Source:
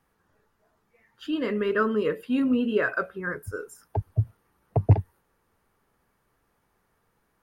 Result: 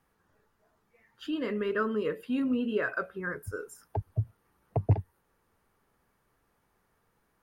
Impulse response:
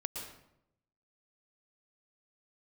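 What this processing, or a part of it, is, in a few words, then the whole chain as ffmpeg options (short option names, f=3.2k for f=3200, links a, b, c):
parallel compression: -filter_complex "[0:a]asplit=2[a][b];[b]acompressor=threshold=-32dB:ratio=6,volume=-0.5dB[c];[a][c]amix=inputs=2:normalize=0,volume=-7.5dB"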